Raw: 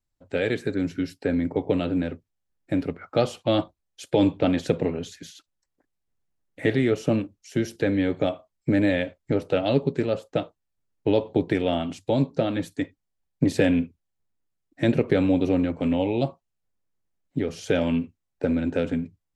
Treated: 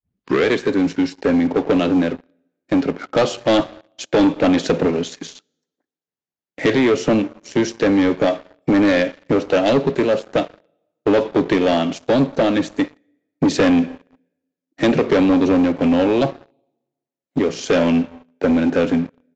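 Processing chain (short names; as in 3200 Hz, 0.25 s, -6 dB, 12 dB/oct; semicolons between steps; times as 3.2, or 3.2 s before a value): tape start at the beginning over 0.47 s; HPF 190 Hz 12 dB/oct; plate-style reverb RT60 1.2 s, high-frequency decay 0.8×, DRR 18.5 dB; sample leveller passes 3; downsampling 16000 Hz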